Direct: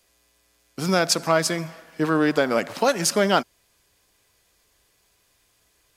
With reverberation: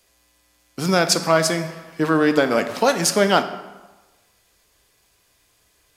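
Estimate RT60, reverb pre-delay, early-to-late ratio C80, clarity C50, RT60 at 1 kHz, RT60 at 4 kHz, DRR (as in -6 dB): 1.2 s, 13 ms, 13.5 dB, 11.5 dB, 1.2 s, 0.80 s, 9.0 dB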